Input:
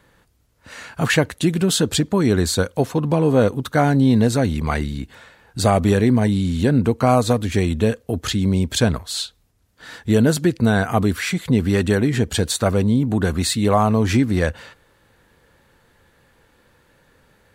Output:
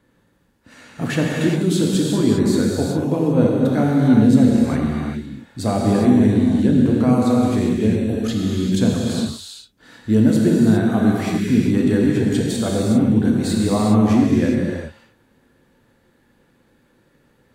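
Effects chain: peaking EQ 250 Hz +10.5 dB 1.4 oct; gated-style reverb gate 430 ms flat, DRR -3 dB; trim -10 dB

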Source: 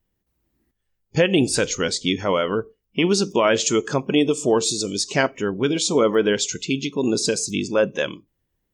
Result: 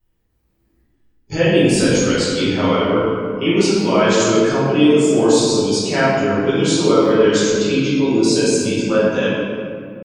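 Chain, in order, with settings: in parallel at 0 dB: peak limiter -17 dBFS, peak gain reduction 10.5 dB; on the sum: tempo 0.87×; reverberation RT60 2.2 s, pre-delay 5 ms, DRR -11.5 dB; trim -10.5 dB

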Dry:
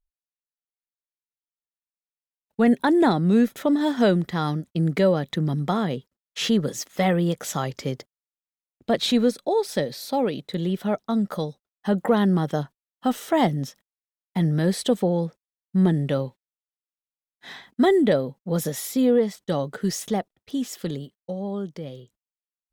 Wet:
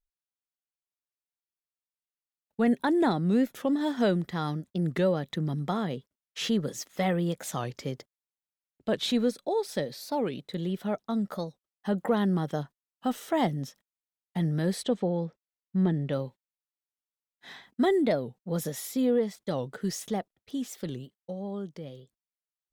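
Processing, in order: 14.83–16.13 s: distance through air 98 m; warped record 45 rpm, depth 160 cents; trim -6 dB

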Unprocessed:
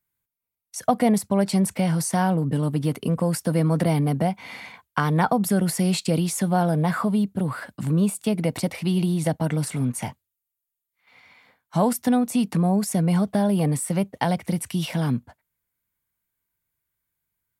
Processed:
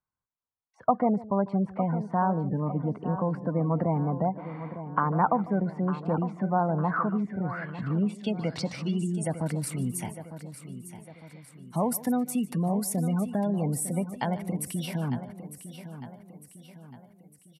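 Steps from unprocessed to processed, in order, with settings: spectral gate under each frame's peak -30 dB strong; feedback delay 904 ms, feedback 47%, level -12 dB; low-pass sweep 1.1 kHz -> 12 kHz, 6.75–9.61 s; delay 149 ms -19 dB; trim -6.5 dB

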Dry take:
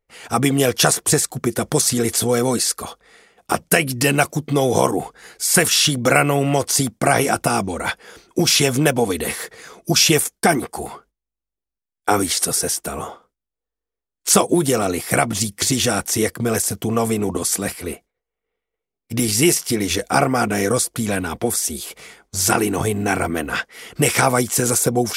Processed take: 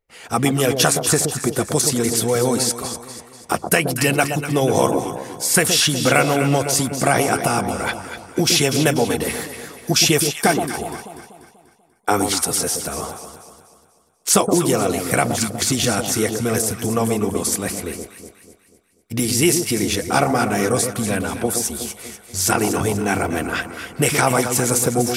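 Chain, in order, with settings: echo whose repeats swap between lows and highs 122 ms, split 950 Hz, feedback 66%, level -6 dB; trim -1 dB

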